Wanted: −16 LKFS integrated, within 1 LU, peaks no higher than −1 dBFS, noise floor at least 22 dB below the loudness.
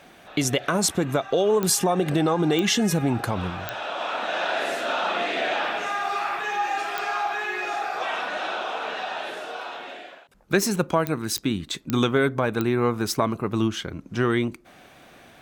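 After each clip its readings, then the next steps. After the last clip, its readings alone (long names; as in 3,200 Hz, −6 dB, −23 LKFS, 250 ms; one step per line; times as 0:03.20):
number of clicks 8; integrated loudness −25.0 LKFS; sample peak −6.5 dBFS; target loudness −16.0 LKFS
→ click removal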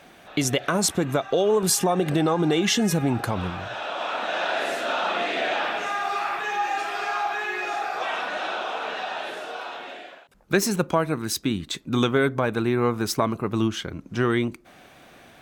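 number of clicks 0; integrated loudness −25.0 LKFS; sample peak −6.5 dBFS; target loudness −16.0 LKFS
→ level +9 dB
brickwall limiter −1 dBFS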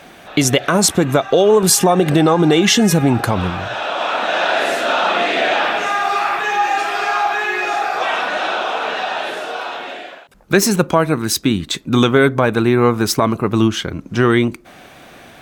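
integrated loudness −16.0 LKFS; sample peak −1.0 dBFS; background noise floor −42 dBFS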